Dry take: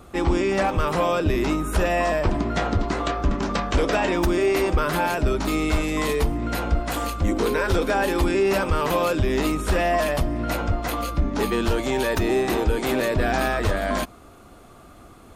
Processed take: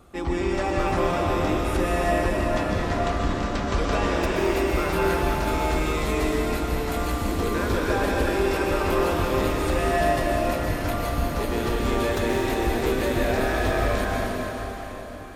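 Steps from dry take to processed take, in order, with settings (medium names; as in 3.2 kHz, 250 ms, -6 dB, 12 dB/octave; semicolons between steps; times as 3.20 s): plate-style reverb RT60 4.8 s, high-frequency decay 0.85×, pre-delay 110 ms, DRR -4 dB; trim -6.5 dB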